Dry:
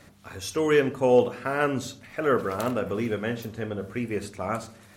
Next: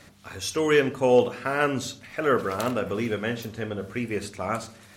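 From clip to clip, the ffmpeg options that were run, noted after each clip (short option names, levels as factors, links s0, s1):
-af "equalizer=f=4200:w=0.44:g=4.5"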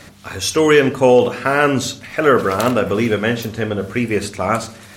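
-af "alimiter=level_in=3.76:limit=0.891:release=50:level=0:latency=1,volume=0.891"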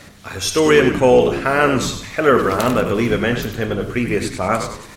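-filter_complex "[0:a]asplit=6[s0][s1][s2][s3][s4][s5];[s1]adelay=97,afreqshift=-75,volume=0.376[s6];[s2]adelay=194,afreqshift=-150,volume=0.17[s7];[s3]adelay=291,afreqshift=-225,volume=0.0759[s8];[s4]adelay=388,afreqshift=-300,volume=0.0343[s9];[s5]adelay=485,afreqshift=-375,volume=0.0155[s10];[s0][s6][s7][s8][s9][s10]amix=inputs=6:normalize=0,volume=0.891"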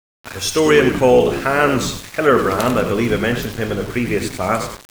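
-af "aeval=exprs='val(0)*gte(abs(val(0)),0.0355)':c=same"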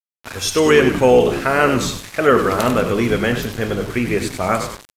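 -af "aresample=32000,aresample=44100"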